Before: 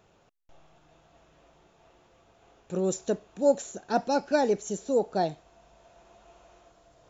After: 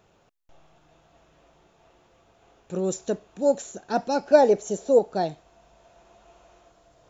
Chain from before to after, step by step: 4.26–4.99 s: peaking EQ 620 Hz +9 dB 1.2 oct; trim +1 dB

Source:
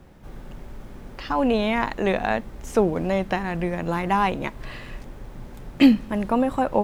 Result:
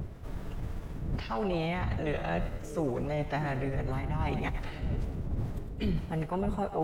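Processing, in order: wind noise 110 Hz -25 dBFS; reverse; compression 6:1, threshold -28 dBFS, peak gain reduction 19.5 dB; reverse; two-band feedback delay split 660 Hz, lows 644 ms, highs 105 ms, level -11 dB; formant-preserving pitch shift -4.5 st

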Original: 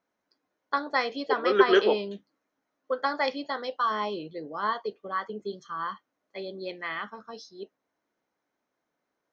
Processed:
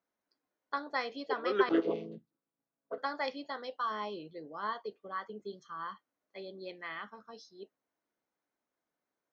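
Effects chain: 1.69–2.98 s: vocoder on a held chord major triad, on A2; trim -8 dB

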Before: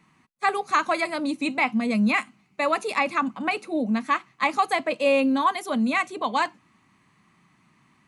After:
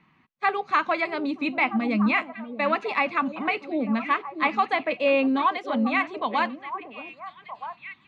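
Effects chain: four-pole ladder low-pass 4.3 kHz, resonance 20%; repeats whose band climbs or falls 636 ms, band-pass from 350 Hz, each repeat 1.4 oct, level -7 dB; trim +4 dB

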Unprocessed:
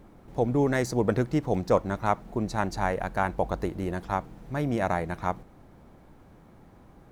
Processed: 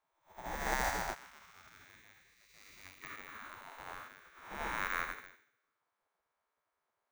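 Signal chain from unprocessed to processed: spectral blur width 458 ms; 1.14–3.02 s: high-pass 830 Hz 6 dB/octave; careless resampling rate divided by 2×, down none, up hold; spectral gate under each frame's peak -15 dB weak; upward expansion 2.5:1, over -59 dBFS; trim +9 dB

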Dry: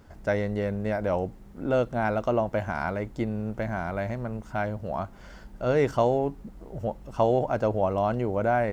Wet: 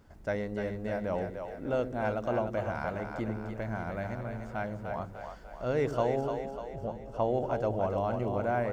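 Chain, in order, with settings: 6.41–7.34 s: treble shelf 3.8 kHz -8 dB; two-band feedback delay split 400 Hz, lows 81 ms, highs 298 ms, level -6 dB; trim -6.5 dB

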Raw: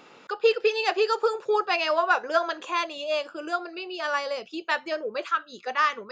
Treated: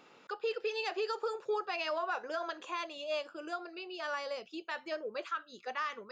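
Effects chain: peak limiter -17.5 dBFS, peak gain reduction 8.5 dB; trim -8.5 dB

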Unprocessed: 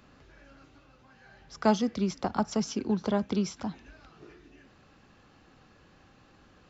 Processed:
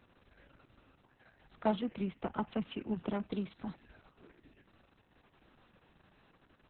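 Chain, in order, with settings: 1.77–3.21 s: resonant high shelf 3.5 kHz -6.5 dB, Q 3; trim -6.5 dB; Opus 6 kbps 48 kHz

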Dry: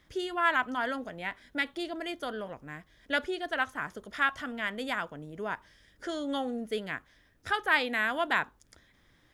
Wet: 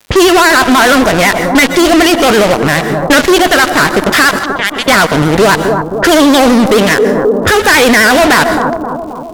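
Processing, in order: in parallel at -0.5 dB: compression, threshold -40 dBFS, peak gain reduction 19 dB; 4.31–4.88 s: on the sum: differentiator; fuzz box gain 46 dB, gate -41 dBFS; vibrato 12 Hz 86 cents; level-controlled noise filter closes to 470 Hz, open at -17.5 dBFS; bucket-brigade echo 265 ms, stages 2048, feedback 56%, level -13.5 dB; on a send at -19 dB: reverberation RT60 0.40 s, pre-delay 112 ms; on the sum: crackle 260 per s -46 dBFS; 6.94–7.64 s: peaking EQ 450 Hz +11.5 dB 0.48 oct; loudness maximiser +19.5 dB; trim -1 dB

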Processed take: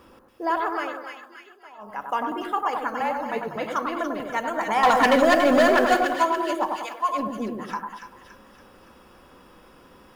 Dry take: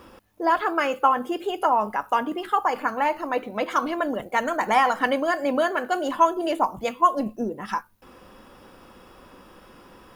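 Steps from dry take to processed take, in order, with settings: 0.58–2.17 s: dip -24 dB, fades 0.40 s equal-power; 3.00–3.56 s: frequency shift -43 Hz; 4.83–5.97 s: waveshaping leveller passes 3; 6.69–7.09 s: high-pass 950 Hz 12 dB/octave; two-band feedback delay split 1.6 kHz, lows 97 ms, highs 284 ms, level -4 dB; trim -4 dB

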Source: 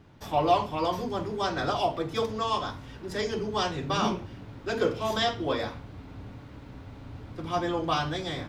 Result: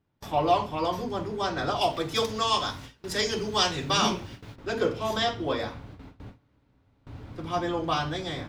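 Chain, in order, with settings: gate with hold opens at -33 dBFS; 1.81–4.56 s: treble shelf 2.2 kHz +11.5 dB

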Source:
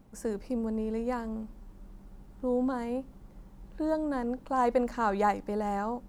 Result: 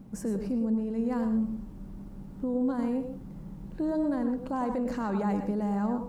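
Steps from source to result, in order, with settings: peaking EQ 190 Hz +12 dB 1.6 oct; peak limiter -24.5 dBFS, peak gain reduction 14 dB; reverberation RT60 0.30 s, pre-delay 92 ms, DRR 6.5 dB; trim +1.5 dB

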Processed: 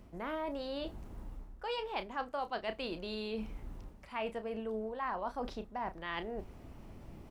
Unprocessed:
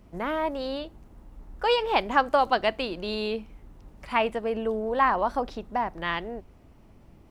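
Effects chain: reverse; compression 4:1, threshold -41 dBFS, peak gain reduction 21 dB; reverse; doubling 32 ms -11 dB; trim +2.5 dB

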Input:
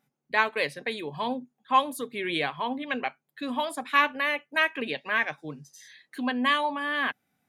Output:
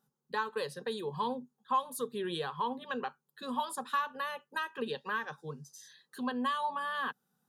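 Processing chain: compression 4:1, threshold -26 dBFS, peak gain reduction 9.5 dB; static phaser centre 440 Hz, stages 8

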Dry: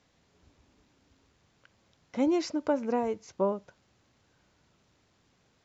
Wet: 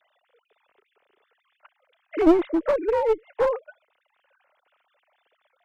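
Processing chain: formants replaced by sine waves; in parallel at 0 dB: compression 12:1, threshold -33 dBFS, peak gain reduction 18 dB; on the sum: one-sided clip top -27 dBFS; trim +7.5 dB

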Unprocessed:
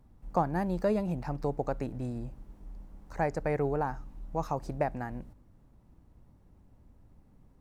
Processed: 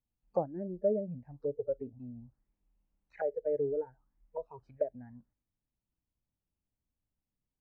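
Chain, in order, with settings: spectral noise reduction 23 dB; touch-sensitive low-pass 540–2900 Hz down, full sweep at -33.5 dBFS; trim -8 dB

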